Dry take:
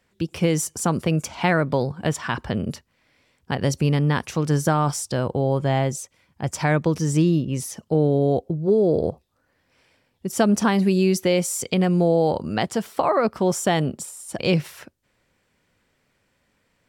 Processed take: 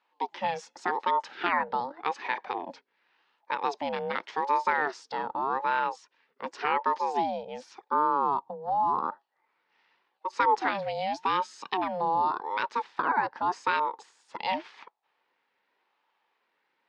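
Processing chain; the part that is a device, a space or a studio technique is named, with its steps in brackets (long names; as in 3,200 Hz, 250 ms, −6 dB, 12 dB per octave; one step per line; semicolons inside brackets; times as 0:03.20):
voice changer toy (ring modulator whose carrier an LFO sweeps 540 Hz, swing 40%, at 0.87 Hz; loudspeaker in its box 410–4,500 Hz, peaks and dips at 630 Hz −8 dB, 910 Hz +7 dB, 1,800 Hz +5 dB)
level −4.5 dB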